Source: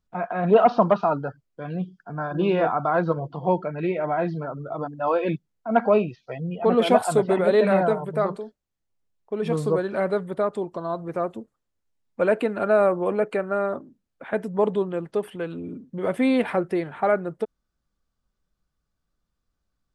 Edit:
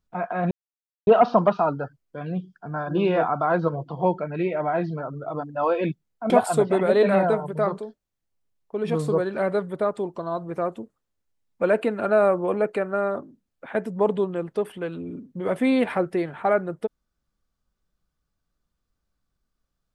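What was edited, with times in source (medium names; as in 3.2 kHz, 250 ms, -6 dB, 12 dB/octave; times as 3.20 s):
0.51 s: insert silence 0.56 s
5.74–6.88 s: delete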